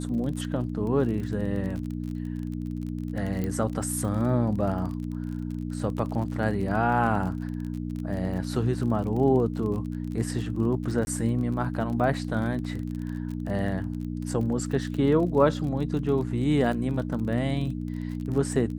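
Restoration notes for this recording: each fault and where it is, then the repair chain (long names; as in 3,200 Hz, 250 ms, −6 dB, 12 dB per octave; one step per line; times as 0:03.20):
surface crackle 32 per second −33 dBFS
mains hum 60 Hz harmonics 5 −32 dBFS
0:03.44: click −18 dBFS
0:11.05–0:11.07: drop-out 20 ms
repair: click removal
hum removal 60 Hz, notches 5
repair the gap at 0:11.05, 20 ms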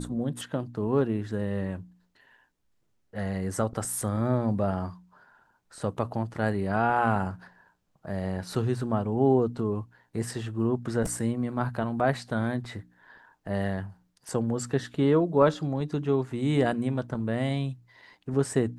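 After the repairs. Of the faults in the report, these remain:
none of them is left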